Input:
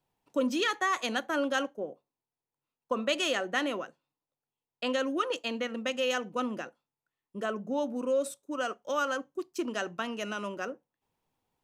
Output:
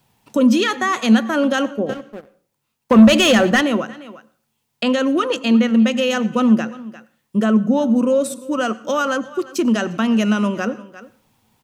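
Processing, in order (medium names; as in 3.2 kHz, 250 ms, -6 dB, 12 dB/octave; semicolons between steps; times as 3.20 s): in parallel at +1.5 dB: peak limiter -24 dBFS, peak gain reduction 10 dB; on the sum: peaking EQ 220 Hz +12.5 dB 0.21 oct; echo from a far wall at 60 m, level -20 dB; 1.89–3.61 s: waveshaping leveller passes 2; peaking EQ 110 Hz +12 dB 1.4 oct; on a send at -20 dB: reverberation RT60 0.45 s, pre-delay 86 ms; on the sum: tape noise reduction on one side only encoder only; trim +4.5 dB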